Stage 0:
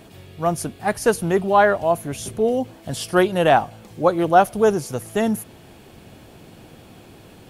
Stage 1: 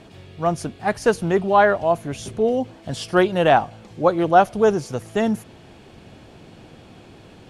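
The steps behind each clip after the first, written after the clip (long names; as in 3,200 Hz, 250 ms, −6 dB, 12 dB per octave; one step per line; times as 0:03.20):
low-pass filter 6,500 Hz 12 dB per octave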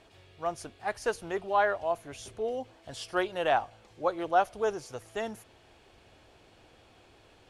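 parametric band 180 Hz −14.5 dB 1.5 octaves
level −9 dB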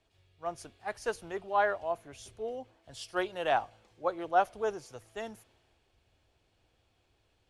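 multiband upward and downward expander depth 40%
level −4 dB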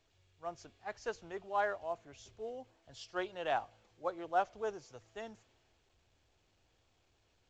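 level −6 dB
mu-law 128 kbit/s 16,000 Hz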